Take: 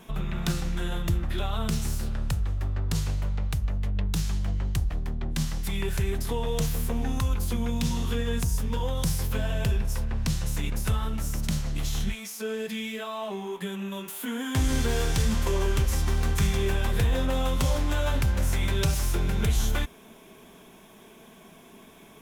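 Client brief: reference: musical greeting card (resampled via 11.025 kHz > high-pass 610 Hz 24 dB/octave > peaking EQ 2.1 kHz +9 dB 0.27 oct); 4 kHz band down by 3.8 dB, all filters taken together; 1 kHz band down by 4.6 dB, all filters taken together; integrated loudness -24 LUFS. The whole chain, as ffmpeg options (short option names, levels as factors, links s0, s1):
-af "equalizer=f=1000:t=o:g=-5.5,equalizer=f=4000:t=o:g=-5,aresample=11025,aresample=44100,highpass=f=610:w=0.5412,highpass=f=610:w=1.3066,equalizer=f=2100:t=o:w=0.27:g=9,volume=5.62"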